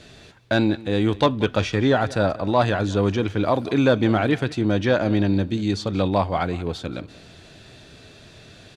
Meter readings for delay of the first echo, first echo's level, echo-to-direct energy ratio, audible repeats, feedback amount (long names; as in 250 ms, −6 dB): 182 ms, −19.5 dB, −19.0 dB, 2, 31%